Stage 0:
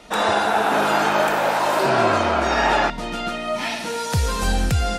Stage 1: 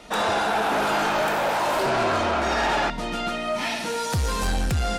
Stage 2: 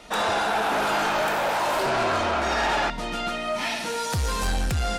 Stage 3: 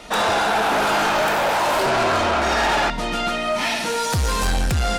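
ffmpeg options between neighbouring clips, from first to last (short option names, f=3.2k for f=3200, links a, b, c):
-af "asoftclip=type=tanh:threshold=-18.5dB"
-af "equalizer=f=210:w=0.41:g=-3"
-af "asoftclip=type=tanh:threshold=-20.5dB,volume=6.5dB"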